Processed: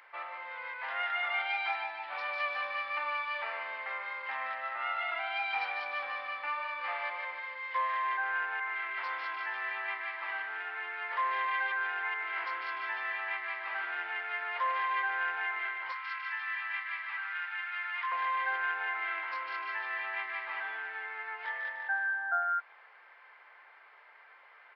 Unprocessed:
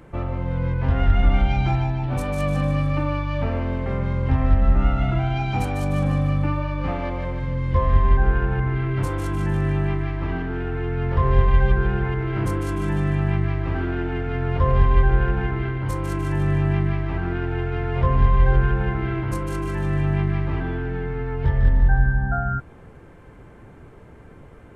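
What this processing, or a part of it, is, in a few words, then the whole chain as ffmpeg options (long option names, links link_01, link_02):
musical greeting card: -filter_complex "[0:a]asettb=1/sr,asplit=3[link_01][link_02][link_03];[link_01]atrim=end=15.924[link_04];[link_02]atrim=start=15.92:end=18.12,asetpts=PTS-STARTPTS,afade=type=in:duration=0.004:curve=qsin,afade=type=out:start_time=2.196:duration=0.004:curve=qsin,highpass=frequency=1100:width=0.5412,highpass=frequency=1100:width=1.3066[link_05];[link_03]atrim=start=18.116[link_06];[link_04][link_05]acrossfade=duration=0.004:curve1=hsin:curve2=qsin[link_07];[link_07][link_06]acrossfade=duration=0.004:curve1=qsin:curve2=hsin,aresample=11025,aresample=44100,highpass=frequency=830:width=0.5412,highpass=frequency=830:width=1.3066,equalizer=frequency=2000:width_type=o:width=0.6:gain=8,volume=-3.5dB"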